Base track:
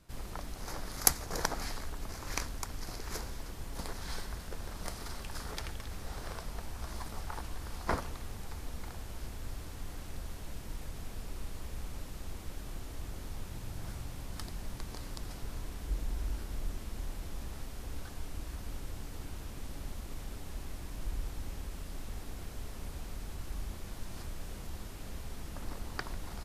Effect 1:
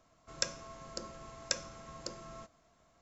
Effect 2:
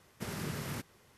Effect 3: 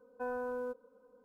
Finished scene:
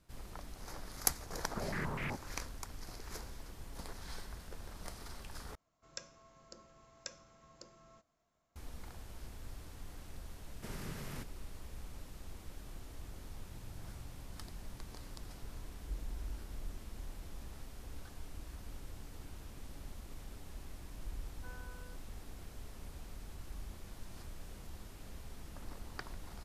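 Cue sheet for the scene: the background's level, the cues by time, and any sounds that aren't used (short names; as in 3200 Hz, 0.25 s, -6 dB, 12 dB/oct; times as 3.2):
base track -6.5 dB
1.35 add 2 -2 dB + stepped low-pass 8 Hz 520–2300 Hz
5.55 replace with 1 -12.5 dB
10.42 add 2 -7 dB
21.23 add 3 -7.5 dB + band-pass 1600 Hz, Q 2.2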